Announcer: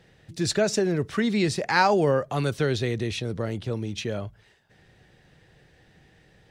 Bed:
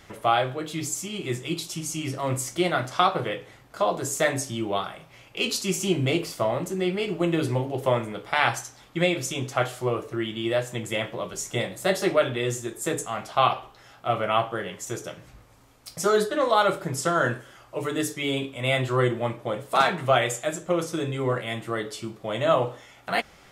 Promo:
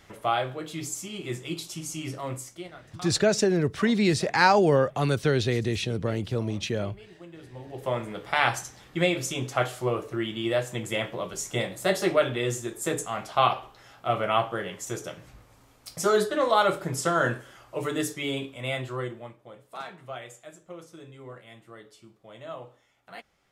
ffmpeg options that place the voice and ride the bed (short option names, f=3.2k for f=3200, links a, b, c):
-filter_complex "[0:a]adelay=2650,volume=1dB[a];[1:a]volume=17dB,afade=t=out:st=2.1:d=0.61:silence=0.125893,afade=t=in:st=7.52:d=0.73:silence=0.0891251,afade=t=out:st=17.9:d=1.46:silence=0.141254[b];[a][b]amix=inputs=2:normalize=0"